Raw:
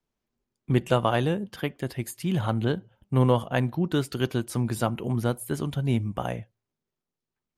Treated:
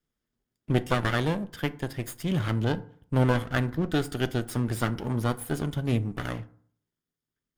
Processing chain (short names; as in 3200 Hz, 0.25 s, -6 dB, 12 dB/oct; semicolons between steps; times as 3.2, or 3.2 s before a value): minimum comb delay 0.58 ms; FDN reverb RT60 0.54 s, low-frequency decay 1.1×, high-frequency decay 0.5×, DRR 13 dB